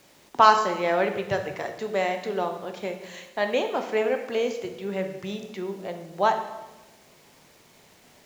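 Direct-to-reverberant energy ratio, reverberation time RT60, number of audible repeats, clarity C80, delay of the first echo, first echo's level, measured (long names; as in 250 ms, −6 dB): 5.5 dB, 1.1 s, no echo audible, 10.0 dB, no echo audible, no echo audible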